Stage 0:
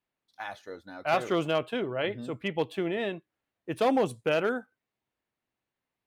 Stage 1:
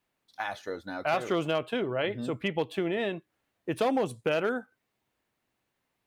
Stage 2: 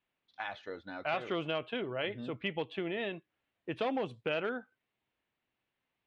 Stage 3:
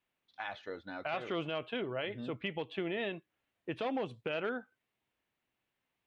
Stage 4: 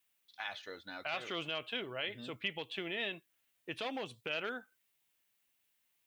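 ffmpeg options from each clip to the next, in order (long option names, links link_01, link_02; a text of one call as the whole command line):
ffmpeg -i in.wav -af "acompressor=threshold=-39dB:ratio=2,volume=7.5dB" out.wav
ffmpeg -i in.wav -af "lowpass=frequency=3100:width_type=q:width=1.7,volume=-7dB" out.wav
ffmpeg -i in.wav -af "alimiter=level_in=1.5dB:limit=-24dB:level=0:latency=1:release=81,volume=-1.5dB" out.wav
ffmpeg -i in.wav -af "crystalizer=i=8:c=0,volume=-7dB" out.wav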